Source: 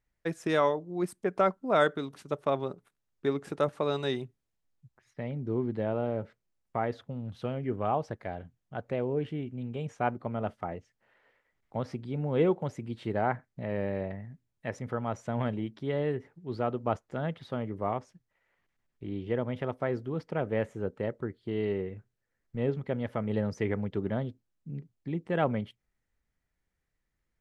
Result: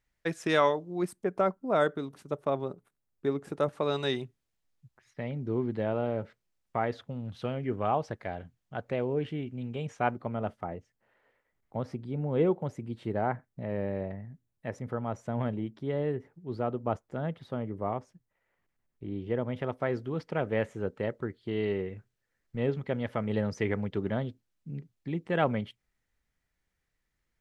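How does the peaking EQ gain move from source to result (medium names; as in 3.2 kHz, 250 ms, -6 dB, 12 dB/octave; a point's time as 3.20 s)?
peaking EQ 3.4 kHz 3 oct
0.89 s +5 dB
1.31 s -5.5 dB
3.47 s -5.5 dB
4.03 s +3.5 dB
10.07 s +3.5 dB
10.76 s -5 dB
19.11 s -5 dB
19.98 s +4 dB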